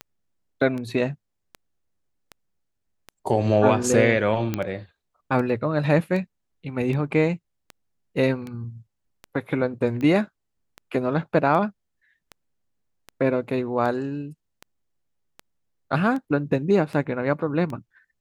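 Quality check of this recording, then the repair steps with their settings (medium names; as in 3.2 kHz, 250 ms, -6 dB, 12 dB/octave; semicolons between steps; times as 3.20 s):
tick 78 rpm -21 dBFS
4.54 s: pop -11 dBFS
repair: de-click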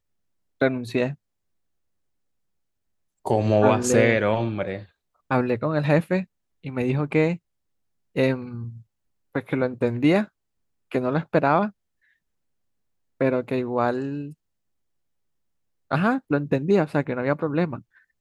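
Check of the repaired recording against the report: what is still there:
nothing left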